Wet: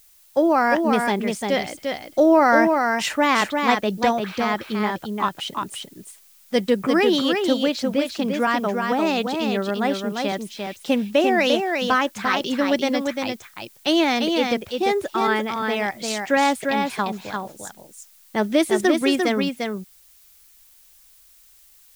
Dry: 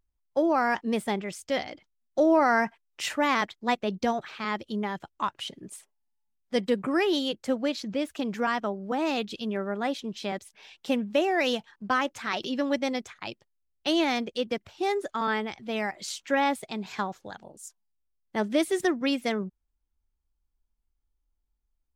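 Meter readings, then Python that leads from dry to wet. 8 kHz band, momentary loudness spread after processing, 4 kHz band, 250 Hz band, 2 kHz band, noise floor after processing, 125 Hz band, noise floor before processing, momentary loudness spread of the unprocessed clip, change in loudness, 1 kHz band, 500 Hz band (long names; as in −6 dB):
+7.5 dB, 11 LU, +7.5 dB, +7.5 dB, +7.5 dB, −53 dBFS, +7.5 dB, −77 dBFS, 11 LU, +7.0 dB, +7.5 dB, +7.5 dB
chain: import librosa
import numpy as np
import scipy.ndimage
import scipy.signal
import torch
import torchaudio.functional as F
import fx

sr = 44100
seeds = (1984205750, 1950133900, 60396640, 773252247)

y = fx.dmg_noise_colour(x, sr, seeds[0], colour='blue', level_db=-60.0)
y = y + 10.0 ** (-4.5 / 20.0) * np.pad(y, (int(347 * sr / 1000.0), 0))[:len(y)]
y = y * librosa.db_to_amplitude(6.0)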